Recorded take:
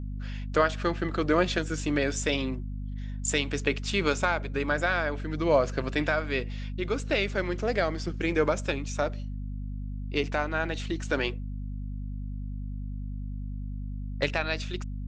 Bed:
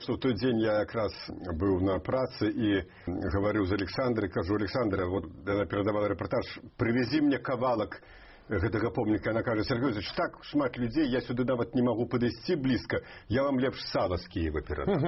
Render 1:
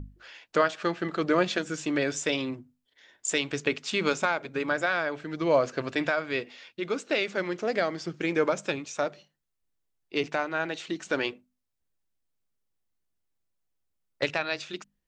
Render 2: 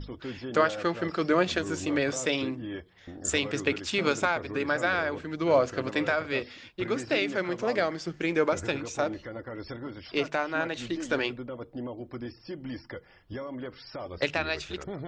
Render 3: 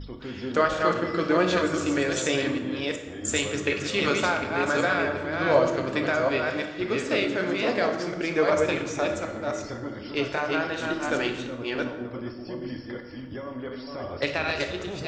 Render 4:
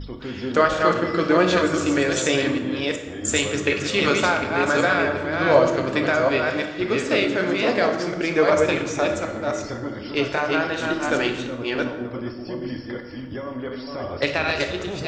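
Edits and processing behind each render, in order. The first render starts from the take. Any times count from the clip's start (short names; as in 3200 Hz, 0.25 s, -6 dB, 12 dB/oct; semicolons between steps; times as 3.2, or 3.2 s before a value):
notches 50/100/150/200/250 Hz
add bed -10 dB
reverse delay 0.37 s, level -3 dB; plate-style reverb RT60 1.2 s, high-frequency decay 0.65×, DRR 4.5 dB
gain +4.5 dB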